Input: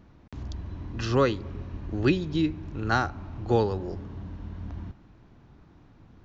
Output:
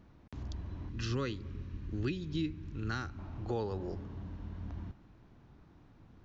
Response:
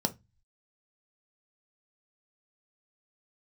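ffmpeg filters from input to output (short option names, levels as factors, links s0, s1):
-filter_complex "[0:a]asettb=1/sr,asplit=3[s0][s1][s2];[s0]atrim=end=0.894[s3];[s1]atrim=start=0.89:end=3.19,asetpts=PTS-STARTPTS,afade=t=in:d=0.004:c=qsin,afade=t=out:st=2.296:d=0.004:c=qsin,equalizer=f=720:w=1.2:g=-14.5[s4];[s2]atrim=start=3.186[s5];[s3][s4]acrossfade=d=0.004:c1=hsin:c2=qsin[s6];[s6][s5]acrossfade=d=0.004:c1=qsin:c2=hsin,alimiter=limit=0.106:level=0:latency=1:release=230,volume=0.562"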